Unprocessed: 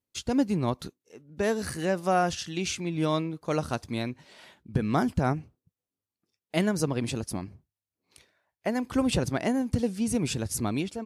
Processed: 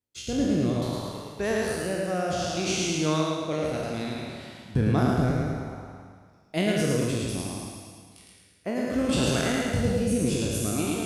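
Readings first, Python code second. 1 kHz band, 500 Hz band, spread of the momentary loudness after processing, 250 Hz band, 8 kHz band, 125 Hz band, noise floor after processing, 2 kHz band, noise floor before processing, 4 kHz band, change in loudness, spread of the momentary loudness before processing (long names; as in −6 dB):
−1.5 dB, +2.5 dB, 13 LU, +1.5 dB, +4.0 dB, +3.5 dB, −56 dBFS, +3.0 dB, below −85 dBFS, +4.0 dB, +2.0 dB, 8 LU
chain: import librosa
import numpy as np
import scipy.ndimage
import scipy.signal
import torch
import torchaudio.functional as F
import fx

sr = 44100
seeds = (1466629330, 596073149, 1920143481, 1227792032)

p1 = fx.spec_trails(x, sr, decay_s=1.6)
p2 = fx.rotary(p1, sr, hz=0.6)
p3 = p2 + fx.echo_feedback(p2, sr, ms=109, feedback_pct=51, wet_db=-3, dry=0)
y = p3 * 10.0 ** (-1.5 / 20.0)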